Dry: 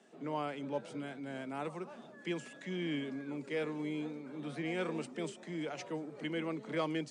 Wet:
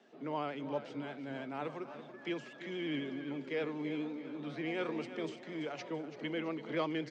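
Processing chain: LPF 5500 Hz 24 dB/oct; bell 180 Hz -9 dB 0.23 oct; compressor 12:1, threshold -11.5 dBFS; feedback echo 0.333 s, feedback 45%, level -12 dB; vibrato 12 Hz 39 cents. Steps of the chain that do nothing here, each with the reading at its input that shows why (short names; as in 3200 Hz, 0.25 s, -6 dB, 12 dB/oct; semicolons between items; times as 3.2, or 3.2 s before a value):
compressor, threshold -11.5 dBFS: input peak -22.5 dBFS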